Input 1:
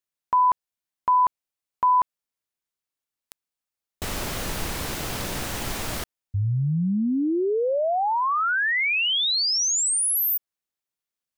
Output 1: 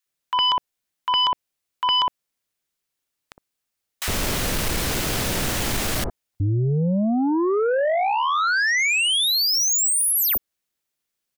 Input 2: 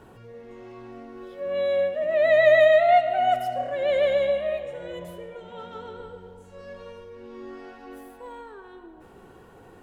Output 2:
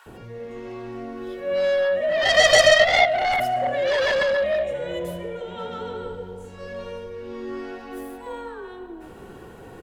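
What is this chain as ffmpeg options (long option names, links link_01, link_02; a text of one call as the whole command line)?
ffmpeg -i in.wav -filter_complex "[0:a]acrossover=split=960[link_01][link_02];[link_01]adelay=60[link_03];[link_03][link_02]amix=inputs=2:normalize=0,aeval=exprs='0.398*(cos(1*acos(clip(val(0)/0.398,-1,1)))-cos(1*PI/2))+0.00708*(cos(6*acos(clip(val(0)/0.398,-1,1)))-cos(6*PI/2))+0.2*(cos(7*acos(clip(val(0)/0.398,-1,1)))-cos(7*PI/2))+0.00447*(cos(8*acos(clip(val(0)/0.398,-1,1)))-cos(8*PI/2))':channel_layout=same" out.wav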